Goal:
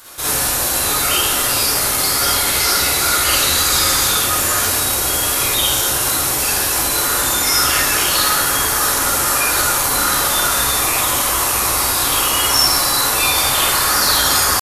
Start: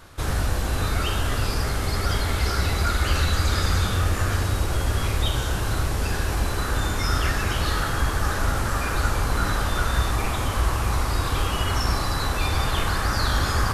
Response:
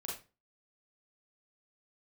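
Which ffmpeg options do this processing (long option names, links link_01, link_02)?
-filter_complex "[0:a]aemphasis=mode=production:type=riaa,atempo=0.94[link_01];[1:a]atrim=start_sample=2205,asetrate=35721,aresample=44100[link_02];[link_01][link_02]afir=irnorm=-1:irlink=0,volume=6.5dB"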